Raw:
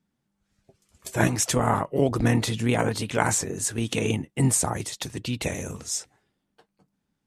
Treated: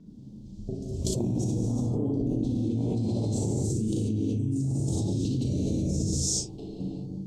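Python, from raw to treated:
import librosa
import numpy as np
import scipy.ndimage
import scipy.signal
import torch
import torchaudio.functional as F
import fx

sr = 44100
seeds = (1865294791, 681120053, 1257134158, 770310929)

y = scipy.signal.sosfilt(scipy.signal.cheby1(2, 1.0, [280.0, 8700.0], 'bandstop', fs=sr, output='sos'), x)
y = fx.peak_eq(y, sr, hz=3600.0, db=5.5, octaves=1.3)
y = fx.hum_notches(y, sr, base_hz=60, count=6)
y = fx.level_steps(y, sr, step_db=9)
y = fx.vibrato(y, sr, rate_hz=3.6, depth_cents=93.0)
y = fx.air_absorb(y, sr, metres=190.0)
y = fx.room_early_taps(y, sr, ms=(37, 59), db=(-5.5, -7.5))
y = fx.rev_gated(y, sr, seeds[0], gate_ms=410, shape='flat', drr_db=-4.0)
y = fx.env_flatten(y, sr, amount_pct=100)
y = y * librosa.db_to_amplitude(-9.0)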